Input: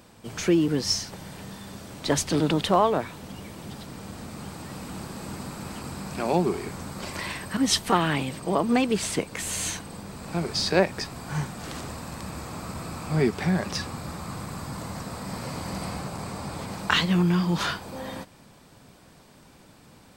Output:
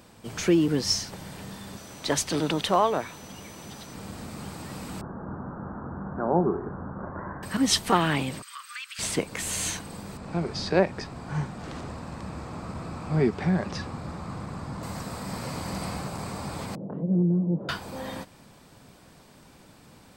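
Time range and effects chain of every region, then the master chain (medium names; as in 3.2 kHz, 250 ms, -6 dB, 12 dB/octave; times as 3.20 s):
1.76–3.93 s: bass shelf 390 Hz -6 dB + whistle 6 kHz -52 dBFS
5.01–7.43 s: steep low-pass 1.6 kHz 72 dB/octave + doubling 47 ms -14 dB
8.42–8.99 s: steep high-pass 1.2 kHz 72 dB/octave + compression 2:1, threshold -38 dBFS
10.17–14.83 s: low-pass 7.9 kHz + treble shelf 2.1 kHz -8.5 dB
16.75–17.69 s: Chebyshev band-pass 130–570 Hz, order 3 + upward compressor, threshold -31 dBFS
whole clip: none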